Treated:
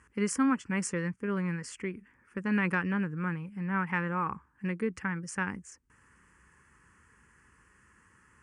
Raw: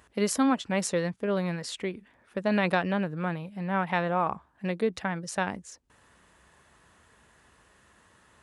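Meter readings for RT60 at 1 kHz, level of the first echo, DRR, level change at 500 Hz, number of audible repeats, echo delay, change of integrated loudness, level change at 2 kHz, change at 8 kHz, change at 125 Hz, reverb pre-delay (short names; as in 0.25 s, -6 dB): none, none, none, -8.5 dB, none, none, -3.0 dB, -0.5 dB, -3.5 dB, -1.0 dB, none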